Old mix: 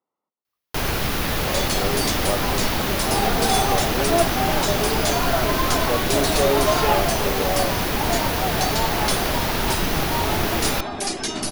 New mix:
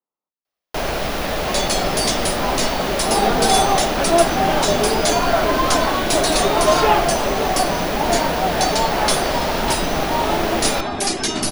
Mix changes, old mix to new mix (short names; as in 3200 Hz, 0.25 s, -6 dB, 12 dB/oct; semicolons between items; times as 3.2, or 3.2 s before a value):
speech -8.5 dB; first sound: add fifteen-band EQ 100 Hz -11 dB, 630 Hz +9 dB, 16000 Hz -11 dB; second sound +5.0 dB